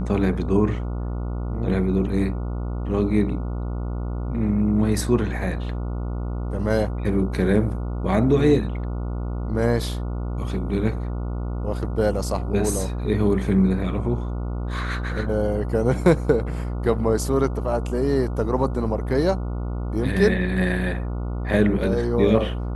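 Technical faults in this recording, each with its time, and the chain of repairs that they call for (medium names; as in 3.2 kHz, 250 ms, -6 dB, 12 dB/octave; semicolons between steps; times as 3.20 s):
buzz 60 Hz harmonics 24 -27 dBFS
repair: de-hum 60 Hz, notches 24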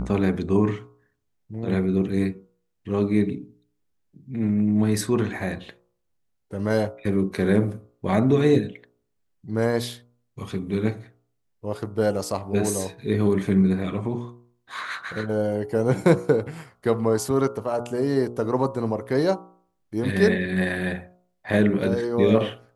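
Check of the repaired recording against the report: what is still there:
nothing left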